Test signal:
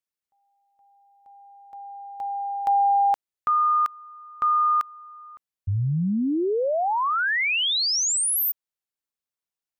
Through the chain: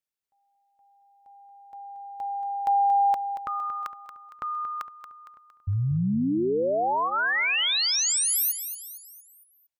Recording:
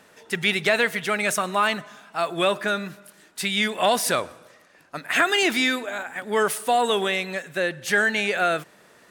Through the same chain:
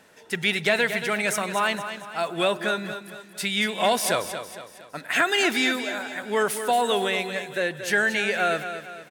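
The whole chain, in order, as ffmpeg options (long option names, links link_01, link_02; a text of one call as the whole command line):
ffmpeg -i in.wav -af "bandreject=frequency=1200:width=12,aecho=1:1:230|460|690|920|1150:0.316|0.142|0.064|0.0288|0.013,volume=-1.5dB" out.wav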